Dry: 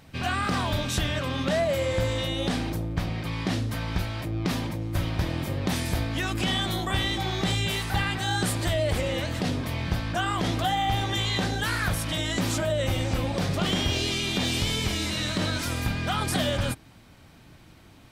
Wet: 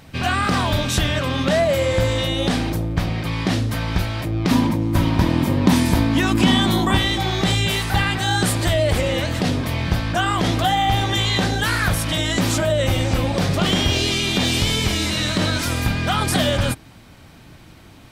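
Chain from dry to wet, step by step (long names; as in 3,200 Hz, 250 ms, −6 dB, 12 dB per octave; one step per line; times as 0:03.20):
0:04.51–0:06.98: hollow resonant body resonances 240/960 Hz, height 10 dB, ringing for 25 ms
level +7 dB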